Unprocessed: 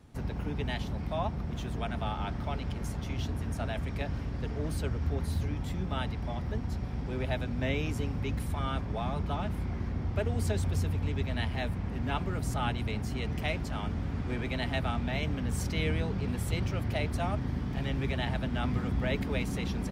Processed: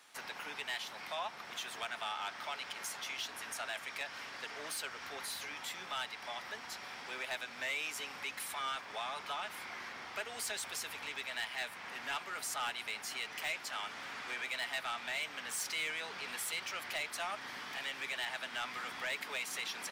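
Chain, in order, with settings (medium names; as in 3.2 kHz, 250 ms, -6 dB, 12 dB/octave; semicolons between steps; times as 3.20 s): high-pass 1.4 kHz 12 dB/octave; in parallel at +1.5 dB: compression, threshold -48 dBFS, peak gain reduction 15.5 dB; on the sum: saturation -33.5 dBFS, distortion -11 dB; trim +2.5 dB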